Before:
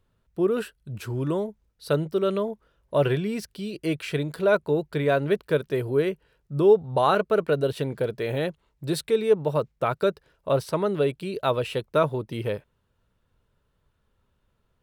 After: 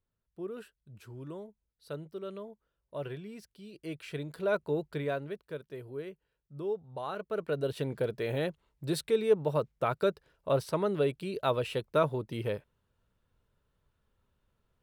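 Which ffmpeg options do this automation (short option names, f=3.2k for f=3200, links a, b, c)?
-af "volume=5dB,afade=t=in:st=3.62:d=1.23:silence=0.334965,afade=t=out:st=4.85:d=0.49:silence=0.316228,afade=t=in:st=7.15:d=0.76:silence=0.251189"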